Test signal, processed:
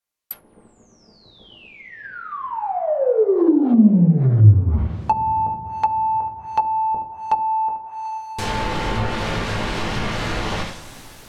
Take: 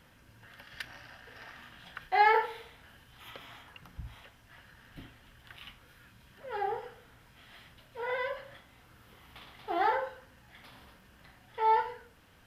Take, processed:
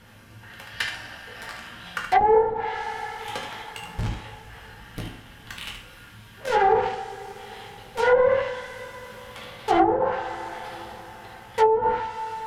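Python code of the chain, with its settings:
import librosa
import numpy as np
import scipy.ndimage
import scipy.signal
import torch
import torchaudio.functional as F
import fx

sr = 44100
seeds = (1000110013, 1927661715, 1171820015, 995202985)

p1 = fx.quant_companded(x, sr, bits=2)
p2 = x + F.gain(torch.from_numpy(p1), -7.0).numpy()
p3 = fx.room_early_taps(p2, sr, ms=(18, 74), db=(-8.0, -7.0))
p4 = fx.rev_double_slope(p3, sr, seeds[0], early_s=0.44, late_s=5.0, knee_db=-21, drr_db=0.0)
p5 = fx.env_lowpass_down(p4, sr, base_hz=440.0, full_db=-17.0)
y = F.gain(torch.from_numpy(p5), 6.5).numpy()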